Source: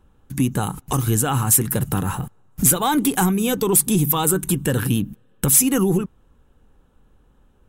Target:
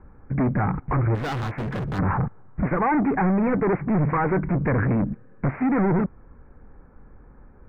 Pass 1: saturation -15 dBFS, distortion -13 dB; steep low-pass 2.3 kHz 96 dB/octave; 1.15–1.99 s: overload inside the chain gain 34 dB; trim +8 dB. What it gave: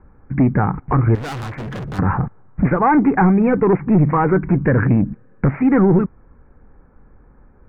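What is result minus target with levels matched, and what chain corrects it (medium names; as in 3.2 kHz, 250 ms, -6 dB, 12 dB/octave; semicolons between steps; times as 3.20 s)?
saturation: distortion -8 dB
saturation -26.5 dBFS, distortion -5 dB; steep low-pass 2.3 kHz 96 dB/octave; 1.15–1.99 s: overload inside the chain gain 34 dB; trim +8 dB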